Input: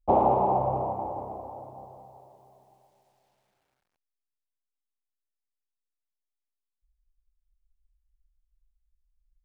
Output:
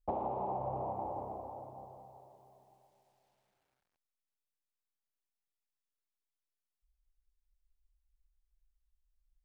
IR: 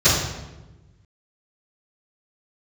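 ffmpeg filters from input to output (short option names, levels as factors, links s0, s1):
-af "acompressor=threshold=0.0398:ratio=10,volume=0.562"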